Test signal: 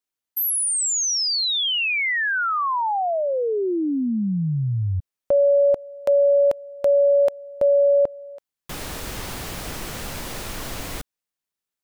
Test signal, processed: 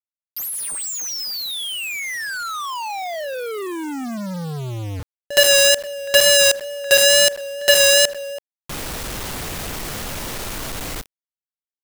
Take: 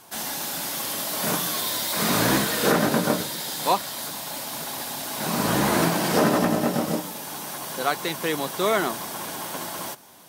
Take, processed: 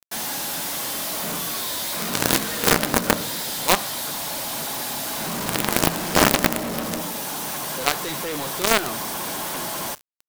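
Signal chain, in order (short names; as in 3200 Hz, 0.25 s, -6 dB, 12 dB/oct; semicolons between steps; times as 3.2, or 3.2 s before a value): Schroeder reverb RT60 0.34 s, combs from 27 ms, DRR 15 dB; wow and flutter 28 cents; companded quantiser 2-bit; gain -2 dB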